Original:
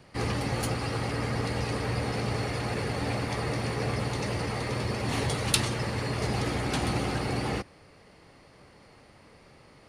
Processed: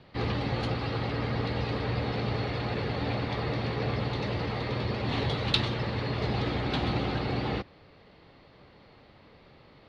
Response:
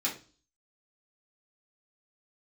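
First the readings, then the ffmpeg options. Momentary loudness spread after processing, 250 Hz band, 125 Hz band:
3 LU, 0.0 dB, 0.0 dB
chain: -af "lowpass=frequency=3800:width_type=q:width=3.8,highshelf=frequency=2600:gain=-12"

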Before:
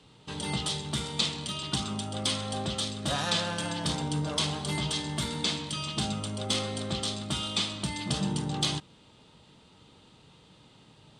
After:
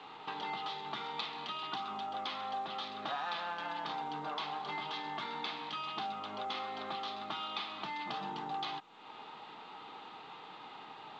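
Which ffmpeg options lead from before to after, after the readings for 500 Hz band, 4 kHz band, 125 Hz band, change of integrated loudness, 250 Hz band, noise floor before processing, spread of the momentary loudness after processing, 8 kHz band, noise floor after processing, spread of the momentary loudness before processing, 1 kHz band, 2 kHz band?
−9.0 dB, −11.5 dB, −24.0 dB, −9.5 dB, −16.0 dB, −58 dBFS, 11 LU, below −25 dB, −51 dBFS, 4 LU, +1.5 dB, −5.0 dB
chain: -af "highpass=480,equalizer=frequency=560:width_type=q:width=4:gain=-9,equalizer=frequency=800:width_type=q:width=4:gain=9,equalizer=frequency=1200:width_type=q:width=4:gain=5,equalizer=frequency=3100:width_type=q:width=4:gain=-5,lowpass=frequency=3400:width=0.5412,lowpass=frequency=3400:width=1.3066,acompressor=threshold=-53dB:ratio=3,volume=10.5dB" -ar 16000 -c:a pcm_mulaw

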